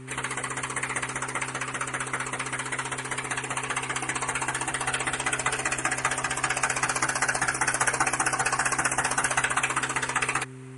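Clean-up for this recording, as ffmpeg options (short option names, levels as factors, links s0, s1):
-af "bandreject=f=129.8:t=h:w=4,bandreject=f=259.6:t=h:w=4,bandreject=f=389.4:t=h:w=4"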